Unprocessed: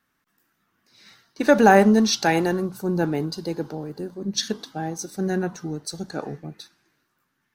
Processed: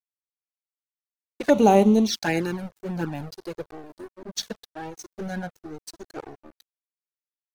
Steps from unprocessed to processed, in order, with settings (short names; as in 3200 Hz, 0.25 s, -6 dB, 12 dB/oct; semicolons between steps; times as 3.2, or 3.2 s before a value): crossover distortion -33 dBFS; envelope flanger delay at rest 4.1 ms, full sweep at -15 dBFS